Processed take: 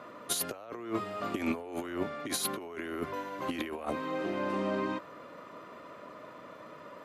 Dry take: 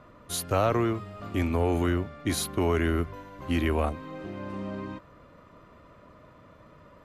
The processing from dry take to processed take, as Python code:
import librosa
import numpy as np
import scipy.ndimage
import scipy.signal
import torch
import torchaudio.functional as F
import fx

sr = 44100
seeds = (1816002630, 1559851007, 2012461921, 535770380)

y = scipy.signal.sosfilt(scipy.signal.butter(2, 280.0, 'highpass', fs=sr, output='sos'), x)
y = fx.over_compress(y, sr, threshold_db=-34.0, ratio=-0.5)
y = y * 10.0 ** (1.5 / 20.0)